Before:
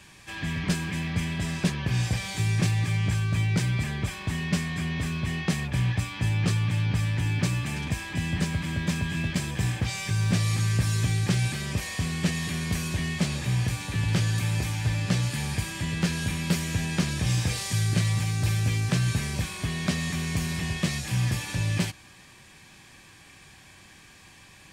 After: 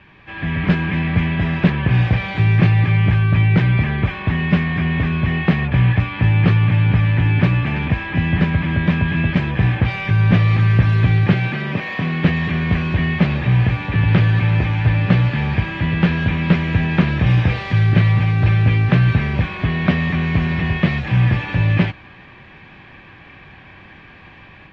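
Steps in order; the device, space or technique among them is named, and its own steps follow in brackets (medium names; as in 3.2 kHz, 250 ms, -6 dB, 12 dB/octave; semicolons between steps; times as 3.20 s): 11.33–12.25 s: high-pass 140 Hz 24 dB/octave; action camera in a waterproof case (low-pass 2.7 kHz 24 dB/octave; level rider gain up to 6 dB; trim +5 dB; AAC 48 kbps 44.1 kHz)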